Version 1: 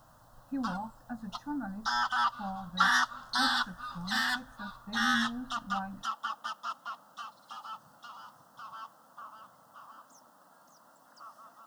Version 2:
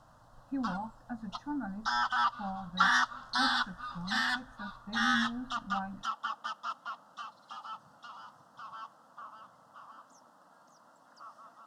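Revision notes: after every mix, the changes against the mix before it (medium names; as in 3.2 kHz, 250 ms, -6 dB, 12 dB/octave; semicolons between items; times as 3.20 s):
master: add distance through air 53 m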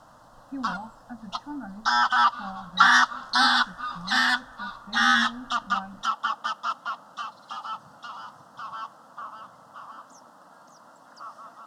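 background +9.0 dB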